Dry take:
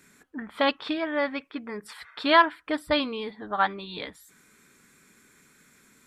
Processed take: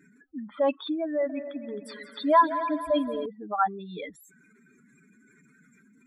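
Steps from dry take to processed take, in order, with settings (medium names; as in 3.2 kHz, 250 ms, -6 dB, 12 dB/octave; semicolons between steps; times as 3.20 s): spectral contrast enhancement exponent 3; 1.03–3.26 s: multi-head delay 88 ms, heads second and third, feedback 49%, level -13 dB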